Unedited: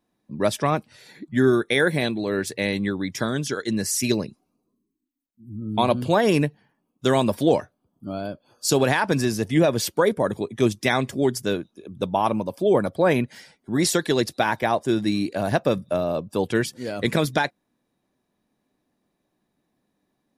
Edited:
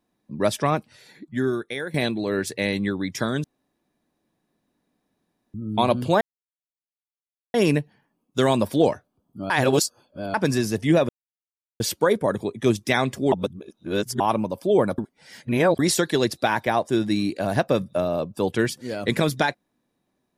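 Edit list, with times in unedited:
0:00.72–0:01.94: fade out, to −14 dB
0:03.44–0:05.54: fill with room tone
0:06.21: splice in silence 1.33 s
0:08.17–0:09.01: reverse
0:09.76: splice in silence 0.71 s
0:11.28–0:12.16: reverse
0:12.94–0:13.75: reverse

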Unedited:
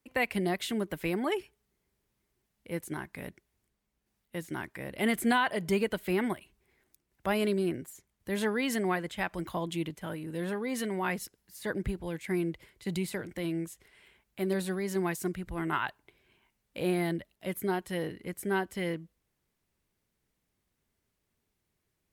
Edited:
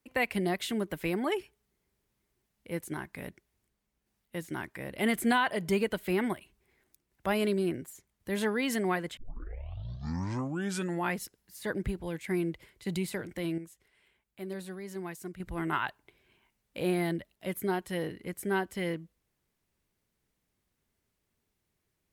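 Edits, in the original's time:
0:09.17: tape start 1.96 s
0:13.58–0:15.40: clip gain −8.5 dB

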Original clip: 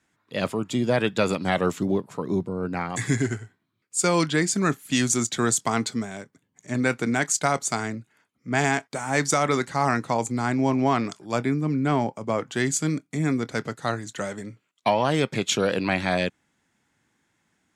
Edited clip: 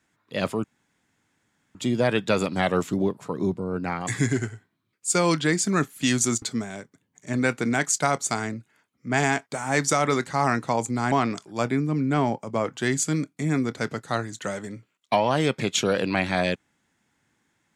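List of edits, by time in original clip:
0:00.64: splice in room tone 1.11 s
0:05.31–0:05.83: remove
0:10.53–0:10.86: remove

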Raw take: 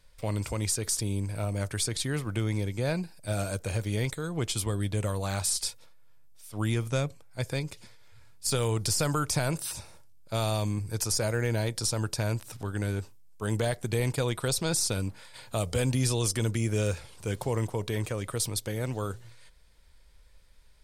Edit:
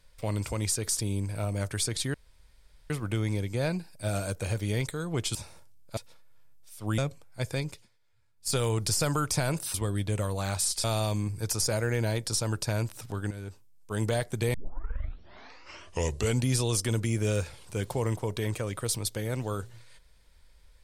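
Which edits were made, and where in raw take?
0:02.14: splice in room tone 0.76 s
0:04.59–0:05.69: swap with 0:09.73–0:10.35
0:06.70–0:06.97: remove
0:07.70–0:08.51: duck −16.5 dB, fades 0.16 s
0:12.82–0:13.54: fade in, from −12 dB
0:14.05: tape start 1.92 s

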